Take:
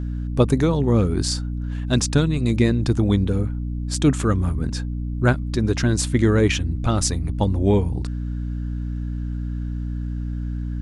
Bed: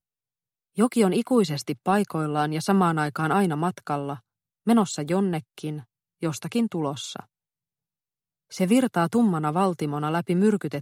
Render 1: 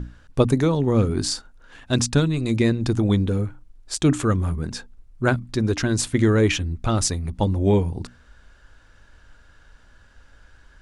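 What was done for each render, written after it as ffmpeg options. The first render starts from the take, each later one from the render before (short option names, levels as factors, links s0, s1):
-af "bandreject=f=60:t=h:w=6,bandreject=f=120:t=h:w=6,bandreject=f=180:t=h:w=6,bandreject=f=240:t=h:w=6,bandreject=f=300:t=h:w=6"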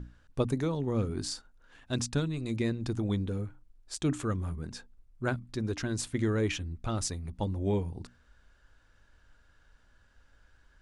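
-af "volume=0.282"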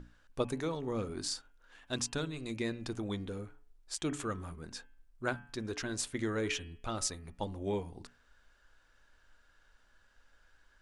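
-af "equalizer=f=85:w=0.34:g=-11,bandreject=f=142.4:t=h:w=4,bandreject=f=284.8:t=h:w=4,bandreject=f=427.2:t=h:w=4,bandreject=f=569.6:t=h:w=4,bandreject=f=712:t=h:w=4,bandreject=f=854.4:t=h:w=4,bandreject=f=996.8:t=h:w=4,bandreject=f=1139.2:t=h:w=4,bandreject=f=1281.6:t=h:w=4,bandreject=f=1424:t=h:w=4,bandreject=f=1566.4:t=h:w=4,bandreject=f=1708.8:t=h:w=4,bandreject=f=1851.2:t=h:w=4,bandreject=f=1993.6:t=h:w=4,bandreject=f=2136:t=h:w=4,bandreject=f=2278.4:t=h:w=4,bandreject=f=2420.8:t=h:w=4,bandreject=f=2563.2:t=h:w=4,bandreject=f=2705.6:t=h:w=4,bandreject=f=2848:t=h:w=4,bandreject=f=2990.4:t=h:w=4,bandreject=f=3132.8:t=h:w=4,bandreject=f=3275.2:t=h:w=4"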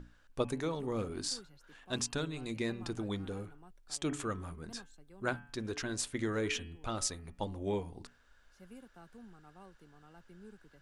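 -filter_complex "[1:a]volume=0.0224[s0];[0:a][s0]amix=inputs=2:normalize=0"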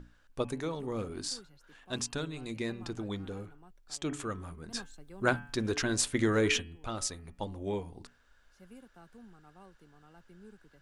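-filter_complex "[0:a]asettb=1/sr,asplit=3[s0][s1][s2];[s0]atrim=end=2.854[s3];[s1]atrim=start=2.85:end=4.12,asetpts=PTS-STARTPTS,afade=t=in:d=0.004:c=qsin,afade=t=out:st=1.266:d=0.004:c=qsin,equalizer=f=9300:w=7.9:g=-10.5[s4];[s2]atrim=start=4.116[s5];[s3][s4]acrossfade=d=0.004:c1=hsin:c2=qsin[s6];[s6][s5]acrossfade=d=0.004:c1=qsin:c2=hsin,asplit=3[s7][s8][s9];[s7]afade=t=out:st=4.73:d=0.02[s10];[s8]acontrast=82,afade=t=in:st=4.73:d=0.02,afade=t=out:st=6.6:d=0.02[s11];[s9]afade=t=in:st=6.6:d=0.02[s12];[s10][s11][s12]amix=inputs=3:normalize=0"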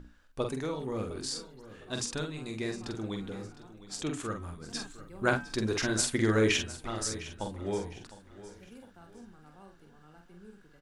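-filter_complex "[0:a]asplit=2[s0][s1];[s1]adelay=46,volume=0.562[s2];[s0][s2]amix=inputs=2:normalize=0,aecho=1:1:708|1416|2124:0.158|0.0586|0.0217"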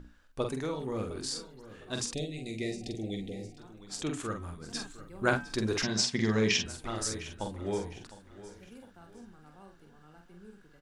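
-filter_complex "[0:a]asettb=1/sr,asplit=3[s0][s1][s2];[s0]atrim=end=2.134[s3];[s1]atrim=start=2.13:end=3.58,asetpts=PTS-STARTPTS,afade=t=in:d=0.004:c=qsin,afade=t=out:st=1.446:d=0.004:c=qsin,asuperstop=centerf=1200:order=20:qfactor=1.1[s4];[s2]atrim=start=3.576[s5];[s3][s4]acrossfade=d=0.004:c1=hsin:c2=qsin[s6];[s6][s5]acrossfade=d=0.004:c1=qsin:c2=hsin,asettb=1/sr,asplit=3[s7][s8][s9];[s7]atrim=end=5.834[s10];[s8]atrim=start=5.83:end=6.66,asetpts=PTS-STARTPTS,afade=t=in:d=0.004:c=qsin,afade=t=out:st=0.826:d=0.004:c=qsin,highpass=100,equalizer=f=190:t=q:w=4:g=9,equalizer=f=310:t=q:w=4:g=-10,equalizer=f=550:t=q:w=4:g=-6,equalizer=f=1400:t=q:w=4:g=-9,equalizer=f=5200:t=q:w=4:g=9,lowpass=f=6700:w=0.5412,lowpass=f=6700:w=1.3066[s11];[s9]atrim=start=6.656[s12];[s10][s11]acrossfade=d=0.004:c1=hsin:c2=qsin[s13];[s13][s12]acrossfade=d=0.004:c1=qsin:c2=hsin"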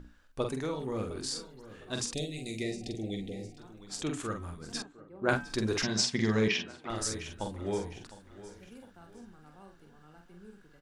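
-filter_complex "[0:a]asettb=1/sr,asplit=3[s0][s1][s2];[s0]atrim=end=2.154[s3];[s1]atrim=start=2.15:end=2.63,asetpts=PTS-STARTPTS,afade=t=in:d=0.004:c=qsin,afade=t=out:st=0.476:d=0.004:c=qsin,aemphasis=mode=production:type=cd[s4];[s2]atrim=start=2.626[s5];[s3][s4]acrossfade=d=0.004:c1=hsin:c2=qsin[s6];[s6][s5]acrossfade=d=0.004:c1=qsin:c2=hsin,asettb=1/sr,asplit=3[s7][s8][s9];[s7]atrim=end=4.824[s10];[s8]atrim=start=4.82:end=5.29,asetpts=PTS-STARTPTS,afade=t=in:d=0.004:c=qsin,afade=t=out:st=0.466:d=0.004:c=qsin,bandpass=f=440:t=q:w=0.68[s11];[s9]atrim=start=5.286[s12];[s10][s11]acrossfade=d=0.004:c1=hsin:c2=qsin[s13];[s13][s12]acrossfade=d=0.004:c1=qsin:c2=hsin,asettb=1/sr,asplit=3[s14][s15][s16];[s14]atrim=end=6.484[s17];[s15]atrim=start=6.48:end=6.9,asetpts=PTS-STARTPTS,afade=t=in:d=0.004:c=qsin,afade=t=out:st=0.416:d=0.004:c=qsin,highpass=200,lowpass=3200[s18];[s16]atrim=start=6.896[s19];[s17][s18]acrossfade=d=0.004:c1=hsin:c2=qsin[s20];[s20][s19]acrossfade=d=0.004:c1=qsin:c2=hsin"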